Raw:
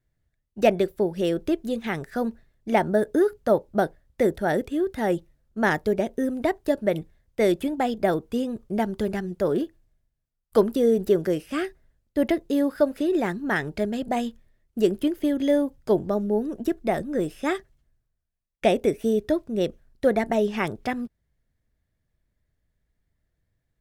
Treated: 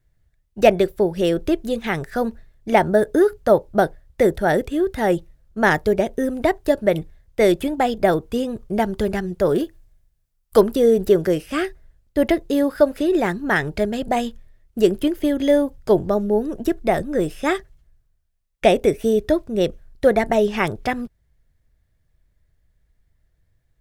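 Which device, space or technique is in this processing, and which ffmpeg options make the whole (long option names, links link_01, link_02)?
low shelf boost with a cut just above: -filter_complex "[0:a]lowshelf=frequency=76:gain=7.5,equalizer=frequency=240:width_type=o:width=0.9:gain=-4.5,asettb=1/sr,asplit=3[link_01][link_02][link_03];[link_01]atrim=end=9.484[link_04];[link_02]atrim=start=9.48:end=10.61,asetpts=PTS-STARTPTS,afade=type=in:duration=0.004:curve=qsin,afade=type=out:start_time=1.126:duration=0.004:curve=qsin,highshelf=frequency=5300:gain=5.5[link_05];[link_03]atrim=start=10.606[link_06];[link_04][link_05]acrossfade=duration=0.004:curve1=hsin:curve2=qsin[link_07];[link_07][link_06]acrossfade=duration=0.004:curve1=qsin:curve2=hsin,volume=6dB"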